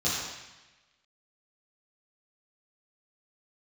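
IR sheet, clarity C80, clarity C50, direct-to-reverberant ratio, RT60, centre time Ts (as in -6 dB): 1.5 dB, -1.0 dB, -10.0 dB, 1.1 s, 83 ms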